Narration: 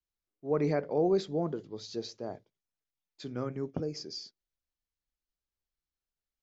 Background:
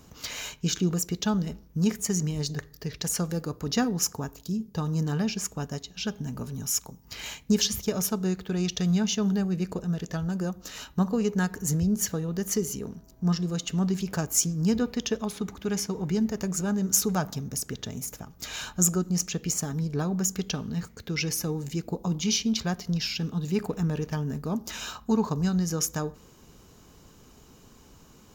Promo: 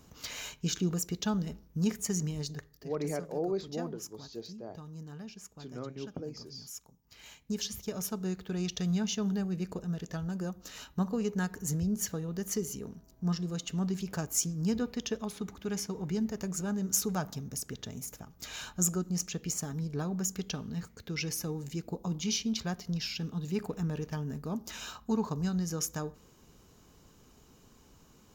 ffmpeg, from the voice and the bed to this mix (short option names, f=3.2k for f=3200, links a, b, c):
-filter_complex "[0:a]adelay=2400,volume=-5.5dB[a];[1:a]volume=6.5dB,afade=t=out:st=2.24:d=0.75:silence=0.237137,afade=t=in:st=7.07:d=1.4:silence=0.266073[b];[a][b]amix=inputs=2:normalize=0"